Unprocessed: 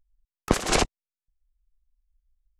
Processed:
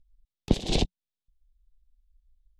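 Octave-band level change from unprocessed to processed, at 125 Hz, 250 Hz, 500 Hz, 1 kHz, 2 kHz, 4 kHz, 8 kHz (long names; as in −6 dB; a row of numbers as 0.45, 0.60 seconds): +2.5, 0.0, −5.0, −11.5, −12.0, −2.5, −11.5 decibels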